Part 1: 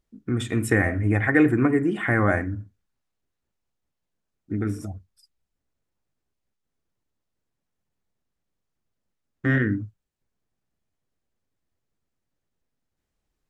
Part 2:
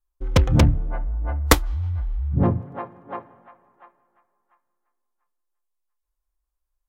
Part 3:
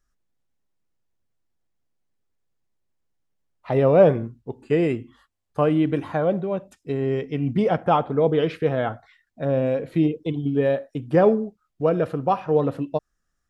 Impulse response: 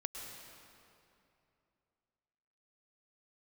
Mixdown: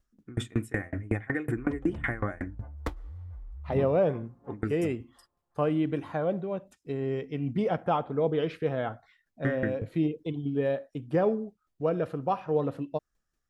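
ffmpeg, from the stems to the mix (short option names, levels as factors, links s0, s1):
-filter_complex "[0:a]aeval=exprs='val(0)*pow(10,-31*if(lt(mod(5.4*n/s,1),2*abs(5.4)/1000),1-mod(5.4*n/s,1)/(2*abs(5.4)/1000),(mod(5.4*n/s,1)-2*abs(5.4)/1000)/(1-2*abs(5.4)/1000))/20)':c=same,volume=1.26,asplit=2[s0][s1];[1:a]lowpass=f=1200:p=1,adelay=1350,volume=0.141,asplit=2[s2][s3];[s3]volume=0.0794[s4];[2:a]volume=0.447[s5];[s1]apad=whole_len=363359[s6];[s2][s6]sidechaincompress=threshold=0.0355:ratio=8:attack=36:release=732[s7];[3:a]atrim=start_sample=2205[s8];[s4][s8]afir=irnorm=-1:irlink=0[s9];[s0][s7][s5][s9]amix=inputs=4:normalize=0,alimiter=limit=0.178:level=0:latency=1:release=299"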